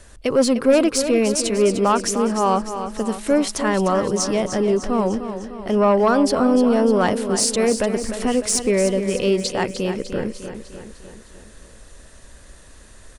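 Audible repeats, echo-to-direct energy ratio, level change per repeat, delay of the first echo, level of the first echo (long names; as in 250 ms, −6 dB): 5, −8.5 dB, −5.0 dB, 301 ms, −10.0 dB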